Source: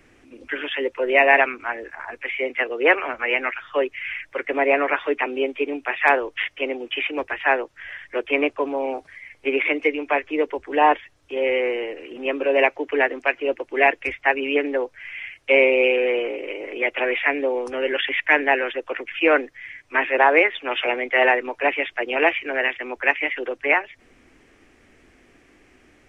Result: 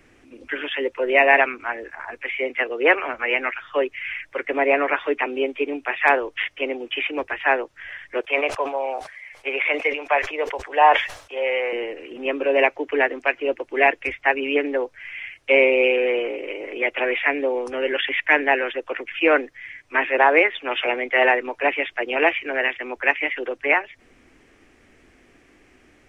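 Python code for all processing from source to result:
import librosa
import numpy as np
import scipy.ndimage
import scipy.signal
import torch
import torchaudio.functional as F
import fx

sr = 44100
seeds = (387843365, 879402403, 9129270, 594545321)

y = fx.chain(x, sr, fx.low_shelf_res(hz=440.0, db=-11.5, q=1.5),
    fx.sustainer(db_per_s=110.0), at=(8.21, 11.73))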